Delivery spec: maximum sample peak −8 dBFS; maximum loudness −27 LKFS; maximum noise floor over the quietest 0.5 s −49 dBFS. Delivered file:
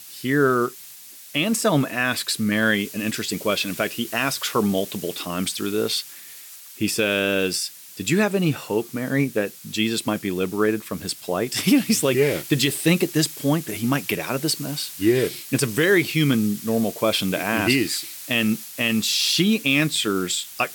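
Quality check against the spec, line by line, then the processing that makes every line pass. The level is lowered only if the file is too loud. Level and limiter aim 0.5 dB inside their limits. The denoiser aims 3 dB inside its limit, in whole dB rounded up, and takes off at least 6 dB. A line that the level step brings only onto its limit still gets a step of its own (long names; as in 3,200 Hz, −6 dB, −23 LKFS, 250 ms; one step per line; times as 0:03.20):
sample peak −7.0 dBFS: out of spec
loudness −22.0 LKFS: out of spec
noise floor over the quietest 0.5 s −43 dBFS: out of spec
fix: broadband denoise 6 dB, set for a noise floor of −43 dBFS
level −5.5 dB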